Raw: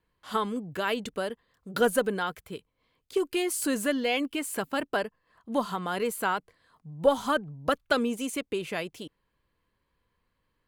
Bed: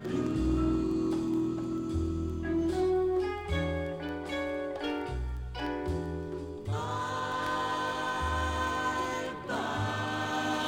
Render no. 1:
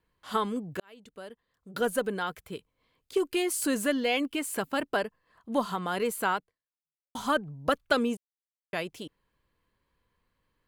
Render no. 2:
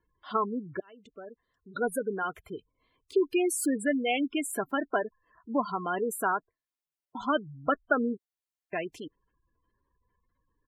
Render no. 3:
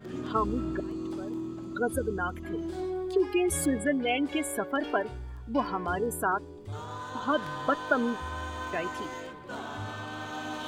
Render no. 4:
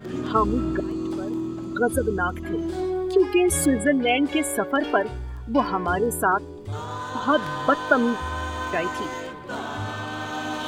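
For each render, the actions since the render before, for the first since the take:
0.80–2.55 s: fade in; 6.36–7.15 s: fade out exponential; 8.17–8.73 s: mute
spectral gate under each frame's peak -15 dB strong; comb 2.9 ms, depth 35%
add bed -5.5 dB
trim +7 dB

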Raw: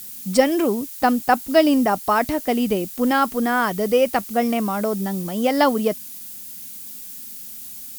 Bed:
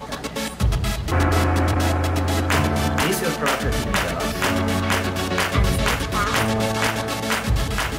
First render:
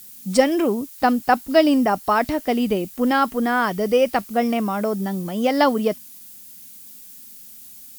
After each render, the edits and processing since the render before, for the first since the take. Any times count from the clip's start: noise print and reduce 6 dB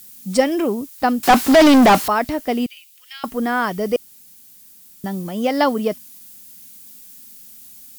1.23–2.08 s: overdrive pedal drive 34 dB, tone 3.3 kHz, clips at -3.5 dBFS; 2.66–3.24 s: ladder high-pass 2.2 kHz, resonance 40%; 3.96–5.04 s: room tone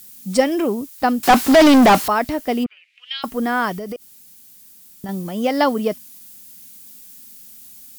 2.63–3.21 s: resonant low-pass 1.2 kHz -> 4.1 kHz; 3.75–5.09 s: compression 16:1, threshold -25 dBFS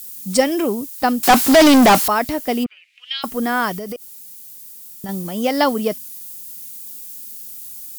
treble shelf 4.7 kHz +8 dB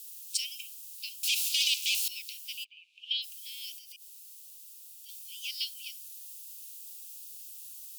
steep high-pass 2.5 kHz 96 dB/octave; tilt EQ -3 dB/octave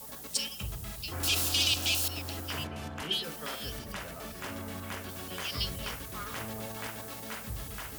add bed -19 dB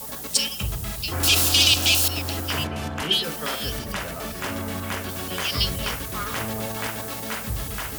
trim +10 dB

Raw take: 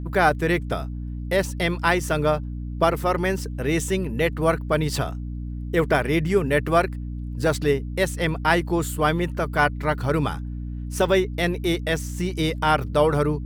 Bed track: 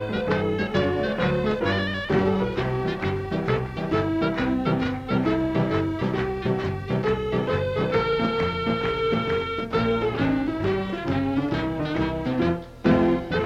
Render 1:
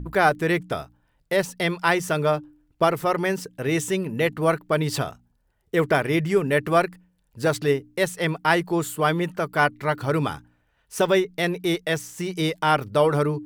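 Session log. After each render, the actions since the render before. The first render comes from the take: de-hum 60 Hz, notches 5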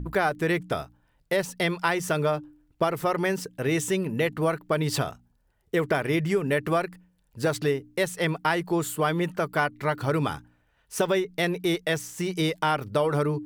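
compression, threshold -20 dBFS, peak gain reduction 7.5 dB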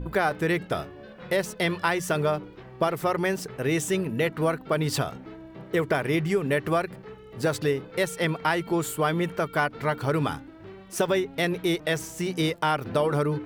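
add bed track -20 dB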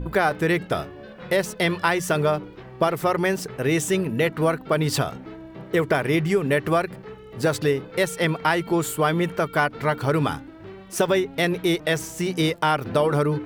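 trim +3.5 dB

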